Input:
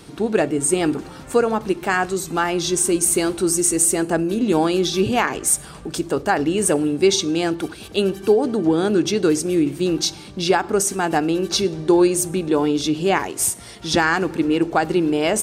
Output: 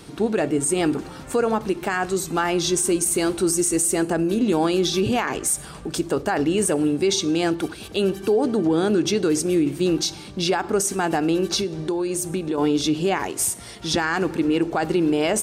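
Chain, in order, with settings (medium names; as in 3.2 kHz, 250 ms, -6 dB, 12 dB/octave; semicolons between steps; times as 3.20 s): peak limiter -12 dBFS, peak gain reduction 7 dB; 11.59–12.58 s: compression 4:1, threshold -22 dBFS, peak gain reduction 6 dB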